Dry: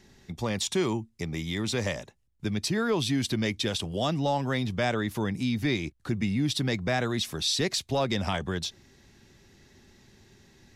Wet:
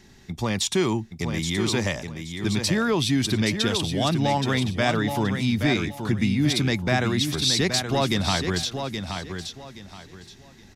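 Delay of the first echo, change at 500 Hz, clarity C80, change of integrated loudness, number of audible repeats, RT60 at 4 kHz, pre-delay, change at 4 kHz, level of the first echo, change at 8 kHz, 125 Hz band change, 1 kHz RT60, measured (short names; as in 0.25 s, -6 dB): 0.824 s, +3.5 dB, none, +5.0 dB, 3, none, none, +6.0 dB, -7.0 dB, +6.0 dB, +6.0 dB, none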